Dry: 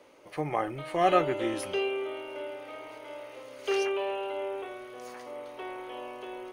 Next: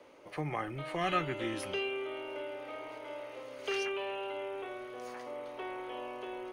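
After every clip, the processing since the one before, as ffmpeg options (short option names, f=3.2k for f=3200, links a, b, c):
-filter_complex "[0:a]highshelf=f=5.5k:g=-7,acrossover=split=260|1200|4500[a][b][c][d];[b]acompressor=threshold=-39dB:ratio=6[e];[a][e][c][d]amix=inputs=4:normalize=0"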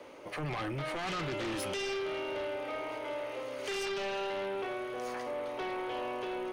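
-af "alimiter=level_in=5dB:limit=-24dB:level=0:latency=1:release=15,volume=-5dB,aeval=exprs='0.0355*sin(PI/2*2*val(0)/0.0355)':c=same,volume=-3dB"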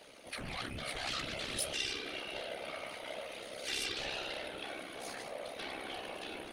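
-af "tremolo=f=66:d=0.974,equalizer=f=160:t=o:w=0.67:g=-11,equalizer=f=400:t=o:w=0.67:g=-11,equalizer=f=1k:t=o:w=0.67:g=-9,equalizer=f=4k:t=o:w=0.67:g=8,equalizer=f=10k:t=o:w=0.67:g=11,afftfilt=real='hypot(re,im)*cos(2*PI*random(0))':imag='hypot(re,im)*sin(2*PI*random(1))':win_size=512:overlap=0.75,volume=8.5dB"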